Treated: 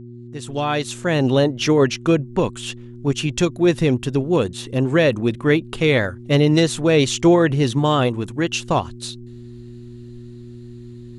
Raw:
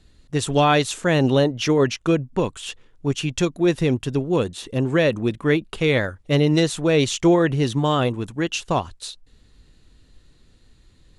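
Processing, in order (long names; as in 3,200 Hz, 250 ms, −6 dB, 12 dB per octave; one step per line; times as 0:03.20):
fade in at the beginning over 1.61 s
hum with harmonics 120 Hz, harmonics 3, −40 dBFS −3 dB per octave
level +2.5 dB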